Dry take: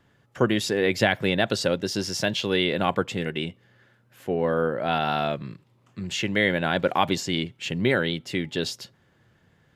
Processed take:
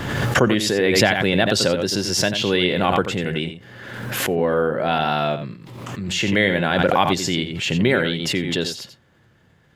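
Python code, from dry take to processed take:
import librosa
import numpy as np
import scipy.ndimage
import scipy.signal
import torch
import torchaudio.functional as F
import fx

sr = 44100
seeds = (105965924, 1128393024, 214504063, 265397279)

p1 = x + fx.echo_single(x, sr, ms=88, db=-10.0, dry=0)
p2 = fx.pre_swell(p1, sr, db_per_s=37.0)
y = p2 * librosa.db_to_amplitude(3.5)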